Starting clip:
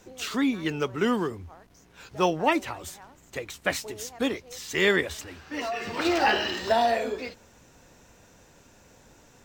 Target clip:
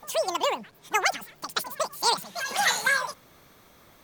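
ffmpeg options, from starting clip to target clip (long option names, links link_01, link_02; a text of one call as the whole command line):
ffmpeg -i in.wav -af "asetrate=103194,aresample=44100" out.wav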